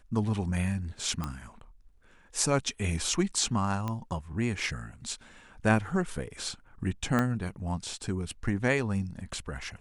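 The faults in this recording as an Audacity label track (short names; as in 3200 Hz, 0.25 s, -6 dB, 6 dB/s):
1.240000	1.240000	pop -19 dBFS
3.880000	3.880000	pop -20 dBFS
7.190000	7.190000	pop -14 dBFS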